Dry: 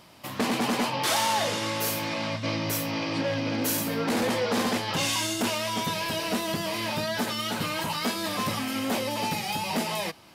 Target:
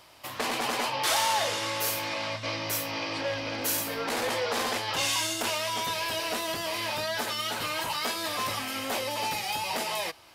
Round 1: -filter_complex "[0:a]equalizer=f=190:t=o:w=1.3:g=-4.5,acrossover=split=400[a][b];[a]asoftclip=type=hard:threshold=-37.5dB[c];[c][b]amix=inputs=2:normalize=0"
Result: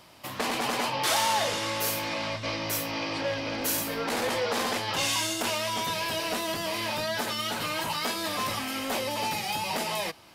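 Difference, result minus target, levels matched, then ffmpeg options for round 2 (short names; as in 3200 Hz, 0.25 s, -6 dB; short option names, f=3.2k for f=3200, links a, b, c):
250 Hz band +3.0 dB
-filter_complex "[0:a]equalizer=f=190:t=o:w=1.3:g=-14.5,acrossover=split=400[a][b];[a]asoftclip=type=hard:threshold=-37.5dB[c];[c][b]amix=inputs=2:normalize=0"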